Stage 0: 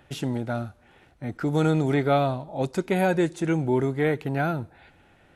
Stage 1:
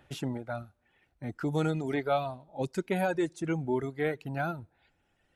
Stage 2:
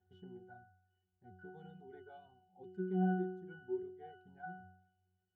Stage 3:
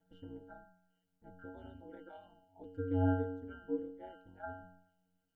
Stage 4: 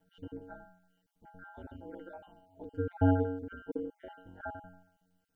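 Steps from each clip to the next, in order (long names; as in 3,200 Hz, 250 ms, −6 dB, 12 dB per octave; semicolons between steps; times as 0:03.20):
reverb reduction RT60 1.8 s; level −5 dB
resonances in every octave F#, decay 0.71 s; level +4 dB
ring modulation 90 Hz; level +5.5 dB
time-frequency cells dropped at random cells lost 21%; level +5.5 dB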